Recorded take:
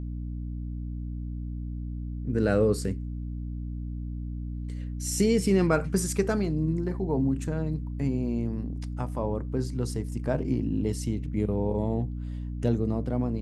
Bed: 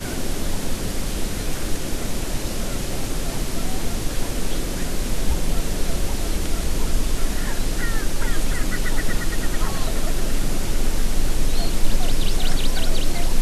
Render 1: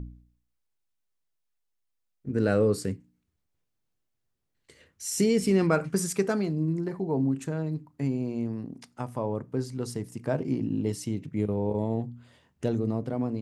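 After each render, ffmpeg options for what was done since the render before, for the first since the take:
-af "bandreject=f=60:t=h:w=4,bandreject=f=120:t=h:w=4,bandreject=f=180:t=h:w=4,bandreject=f=240:t=h:w=4,bandreject=f=300:t=h:w=4"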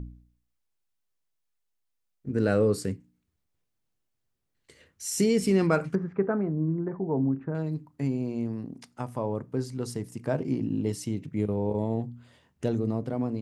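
-filter_complex "[0:a]asettb=1/sr,asplit=3[s0][s1][s2];[s0]atrim=end=5.954[s3];[s1]atrim=start=5.95:end=7.55,asetpts=PTS-STARTPTS,afade=t=in:d=0.004:c=qsin,afade=t=out:st=1.596:d=0.004:c=qsin,lowpass=f=1600:w=0.5412,lowpass=f=1600:w=1.3066[s4];[s2]atrim=start=7.546[s5];[s3][s4]acrossfade=d=0.004:c1=hsin:c2=qsin[s6];[s6][s5]acrossfade=d=0.004:c1=qsin:c2=hsin"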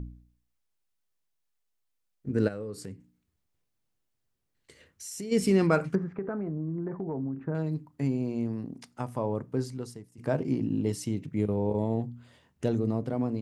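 -filter_complex "[0:a]asplit=3[s0][s1][s2];[s0]afade=t=out:st=2.47:d=0.02[s3];[s1]acompressor=threshold=0.00891:ratio=2.5:attack=3.2:release=140:knee=1:detection=peak,afade=t=in:st=2.47:d=0.02,afade=t=out:st=5.31:d=0.02[s4];[s2]afade=t=in:st=5.31:d=0.02[s5];[s3][s4][s5]amix=inputs=3:normalize=0,asettb=1/sr,asplit=3[s6][s7][s8];[s6]atrim=end=6.034[s9];[s7]atrim=start=6.03:end=7.38,asetpts=PTS-STARTPTS,afade=t=in:d=0.004:c=qsin,afade=t=out:st=1.346:d=0.004:c=qsin,acompressor=threshold=0.0355:ratio=6:attack=3.2:release=140:knee=1:detection=peak[s10];[s8]atrim=start=7.376[s11];[s9][s10]acrossfade=d=0.004:c1=hsin:c2=qsin[s12];[s12][s11]acrossfade=d=0.004:c1=qsin:c2=hsin,asplit=2[s13][s14];[s13]atrim=end=10.18,asetpts=PTS-STARTPTS,afade=t=out:st=9.67:d=0.51:c=qua:silence=0.149624[s15];[s14]atrim=start=10.18,asetpts=PTS-STARTPTS,afade=t=in:d=0.004:c=hsin:silence=0.149624[s16];[s15][s16]concat=n=2:v=0:a=1"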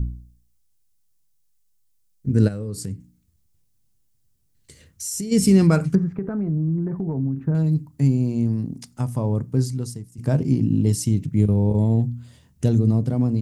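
-af "bass=f=250:g=15,treble=f=4000:g=13"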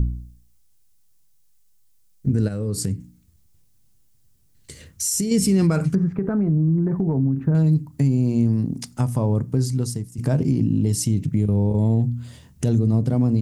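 -filter_complex "[0:a]asplit=2[s0][s1];[s1]acompressor=threshold=0.0398:ratio=6,volume=1.26[s2];[s0][s2]amix=inputs=2:normalize=0,alimiter=limit=0.282:level=0:latency=1:release=58"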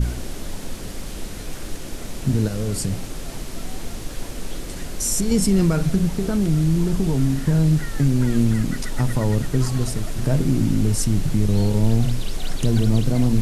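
-filter_complex "[1:a]volume=0.473[s0];[0:a][s0]amix=inputs=2:normalize=0"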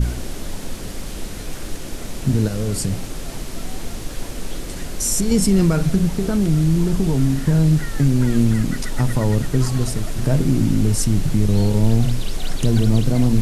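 -af "volume=1.26"

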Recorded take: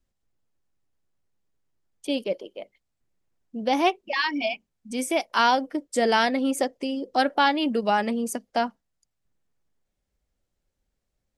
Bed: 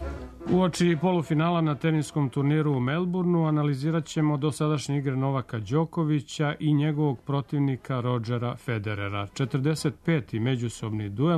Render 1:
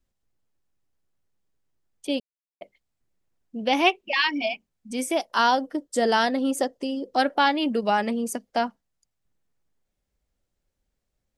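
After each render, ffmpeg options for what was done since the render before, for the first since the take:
-filter_complex "[0:a]asettb=1/sr,asplit=3[s0][s1][s2];[s0]atrim=end=3.594[s3];[s1]atrim=start=3.59:end=4.3,asetpts=PTS-STARTPTS,afade=t=in:d=0.004:c=qsin,afade=t=out:st=0.706:d=0.004:c=qsin,equalizer=f=2700:t=o:w=0.65:g=8.5[s4];[s2]atrim=start=4.296[s5];[s3][s4]acrossfade=d=0.004:c1=hsin:c2=qsin[s6];[s6][s5]acrossfade=d=0.004:c1=qsin:c2=hsin,asettb=1/sr,asplit=3[s7][s8][s9];[s7]atrim=end=5.144[s10];[s8]atrim=start=5.14:end=7.01,asetpts=PTS-STARTPTS,afade=t=in:d=0.004:c=qsin,afade=t=out:st=1.866:d=0.004:c=qsin,equalizer=f=2300:t=o:w=0.25:g=-10.5[s11];[s9]atrim=start=7.006[s12];[s10][s11]acrossfade=d=0.004:c1=hsin:c2=qsin[s13];[s13][s12]acrossfade=d=0.004:c1=qsin:c2=hsin,asplit=3[s14][s15][s16];[s14]atrim=end=2.2,asetpts=PTS-STARTPTS,afade=t=out:st=2.196:d=0.004:c=hsin[s17];[s15]atrim=start=2.2:end=2.61,asetpts=PTS-STARTPTS,volume=0[s18];[s16]atrim=start=2.61,asetpts=PTS-STARTPTS,afade=t=in:d=0.004:c=hsin[s19];[s17][s18][s19]concat=n=3:v=0:a=1"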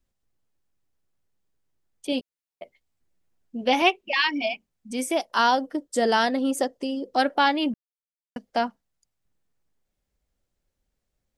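-filter_complex "[0:a]asettb=1/sr,asplit=3[s0][s1][s2];[s0]atrim=end=2.114[s3];[s1]atrim=start=2.11:end=3.82,asetpts=PTS-STARTPTS,afade=t=in:d=0.004:c=qsin,afade=t=out:st=1.706:d=0.004:c=qsin,asplit=2[s4][s5];[s5]adelay=12,volume=0.501[s6];[s4][s6]amix=inputs=2:normalize=0,atrim=end_sample=75411[s7];[s2]atrim=start=3.816[s8];[s3][s7]acrossfade=d=0.004:c1=hsin:c2=qsin[s9];[s9][s8]acrossfade=d=0.004:c1=qsin:c2=hsin,asplit=3[s10][s11][s12];[s10]atrim=end=7.74,asetpts=PTS-STARTPTS,afade=t=out:st=7.736:d=0.004:c=hsin[s13];[s11]atrim=start=7.74:end=8.36,asetpts=PTS-STARTPTS,volume=0[s14];[s12]atrim=start=8.36,asetpts=PTS-STARTPTS,afade=t=in:d=0.004:c=hsin[s15];[s13][s14][s15]concat=n=3:v=0:a=1"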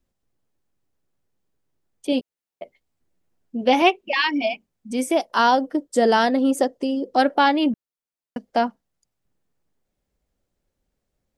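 -af "equalizer=f=330:w=0.33:g=5.5"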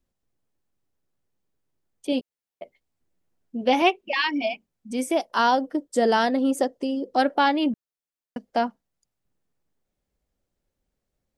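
-af "volume=0.708"

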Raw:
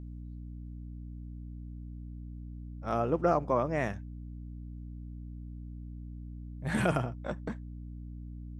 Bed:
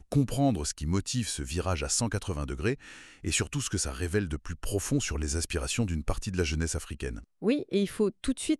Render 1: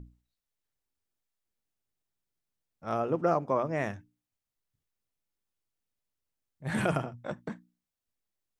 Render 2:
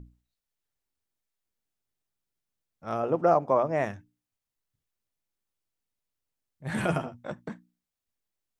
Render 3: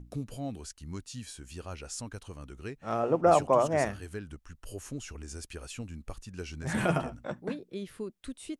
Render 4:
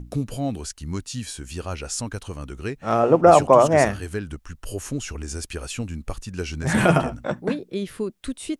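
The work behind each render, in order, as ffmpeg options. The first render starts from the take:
-af "bandreject=f=60:t=h:w=6,bandreject=f=120:t=h:w=6,bandreject=f=180:t=h:w=6,bandreject=f=240:t=h:w=6,bandreject=f=300:t=h:w=6"
-filter_complex "[0:a]asettb=1/sr,asplit=3[s0][s1][s2];[s0]atrim=end=3.034[s3];[s1]atrim=start=3.03:end=3.85,asetpts=PTS-STARTPTS,afade=t=in:d=0.004:c=qsin,afade=t=out:st=0.816:d=0.004:c=qsin,equalizer=f=720:w=1.2:g=7[s4];[s2]atrim=start=3.846[s5];[s3][s4]acrossfade=d=0.004:c1=hsin:c2=qsin[s6];[s6][s5]acrossfade=d=0.004:c1=qsin:c2=hsin,asettb=1/sr,asplit=3[s7][s8][s9];[s7]atrim=end=6.824[s10];[s8]atrim=start=6.82:end=7.25,asetpts=PTS-STARTPTS,afade=t=in:d=0.004:c=qsin,afade=t=out:st=0.426:d=0.004:c=qsin,asplit=2[s11][s12];[s12]adelay=12,volume=0.531[s13];[s11][s13]amix=inputs=2:normalize=0,atrim=end_sample=18963[s14];[s9]atrim=start=7.246[s15];[s10][s14]acrossfade=d=0.004:c1=hsin:c2=qsin[s16];[s16][s15]acrossfade=d=0.004:c1=qsin:c2=hsin"
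-filter_complex "[1:a]volume=0.266[s0];[0:a][s0]amix=inputs=2:normalize=0"
-af "volume=3.35,alimiter=limit=0.794:level=0:latency=1"

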